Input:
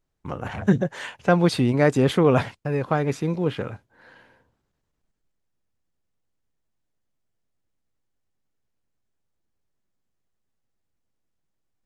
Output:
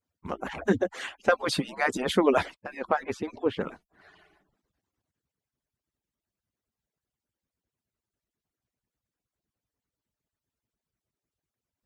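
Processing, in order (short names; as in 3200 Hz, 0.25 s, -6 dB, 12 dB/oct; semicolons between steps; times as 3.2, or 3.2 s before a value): median-filter separation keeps percussive; 2.54–3.61 high shelf 5700 Hz -11.5 dB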